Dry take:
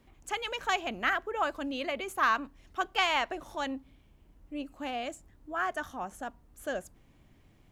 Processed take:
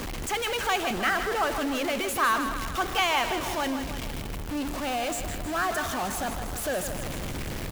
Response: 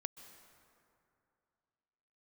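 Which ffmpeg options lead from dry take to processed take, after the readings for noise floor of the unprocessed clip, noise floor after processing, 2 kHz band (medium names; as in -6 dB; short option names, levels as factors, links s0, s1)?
-62 dBFS, -34 dBFS, +4.0 dB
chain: -af "aeval=exprs='val(0)+0.5*0.0398*sgn(val(0))':c=same,aecho=1:1:158|316|474|632|790|948|1106:0.355|0.206|0.119|0.0692|0.0402|0.0233|0.0135"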